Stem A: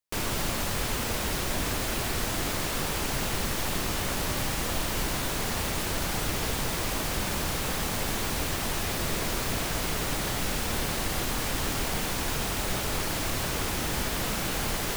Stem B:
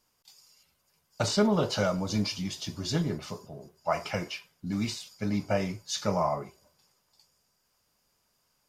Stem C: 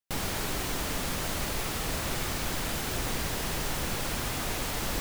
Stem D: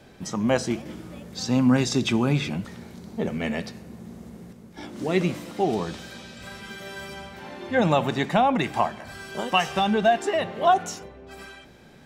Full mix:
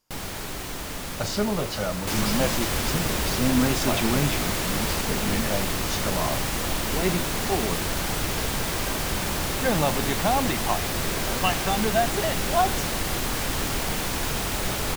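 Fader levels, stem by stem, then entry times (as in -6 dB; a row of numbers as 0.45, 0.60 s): +2.5, -1.5, -1.5, -3.5 dB; 1.95, 0.00, 0.00, 1.90 s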